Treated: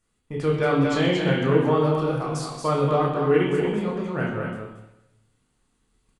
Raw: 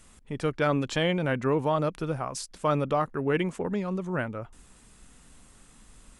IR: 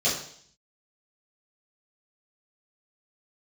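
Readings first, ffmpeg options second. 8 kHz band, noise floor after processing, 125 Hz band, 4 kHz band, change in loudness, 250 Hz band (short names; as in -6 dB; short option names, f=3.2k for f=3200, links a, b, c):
0.0 dB, -71 dBFS, +6.0 dB, +3.5 dB, +5.5 dB, +6.0 dB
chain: -filter_complex "[0:a]asplit=2[a][b];[b]adelay=28,volume=-7dB[c];[a][c]amix=inputs=2:normalize=0,asplit=2[d][e];[e]aecho=0:1:129:0.133[f];[d][f]amix=inputs=2:normalize=0,agate=range=-18dB:threshold=-45dB:ratio=16:detection=peak,aecho=1:1:228:0.562,asplit=2[g][h];[1:a]atrim=start_sample=2205,asetrate=27783,aresample=44100[i];[h][i]afir=irnorm=-1:irlink=0,volume=-14.5dB[j];[g][j]amix=inputs=2:normalize=0,volume=-2dB"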